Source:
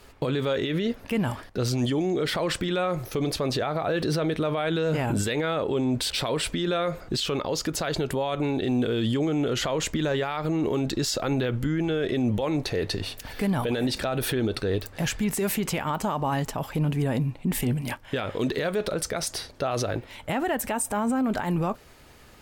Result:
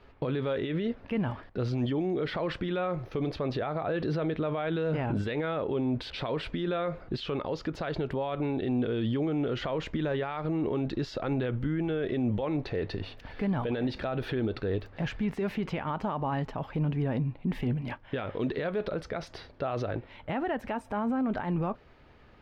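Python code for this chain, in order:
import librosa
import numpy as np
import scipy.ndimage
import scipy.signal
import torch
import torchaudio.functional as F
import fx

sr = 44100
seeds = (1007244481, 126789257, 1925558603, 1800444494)

y = fx.air_absorb(x, sr, metres=300.0)
y = F.gain(torch.from_numpy(y), -3.5).numpy()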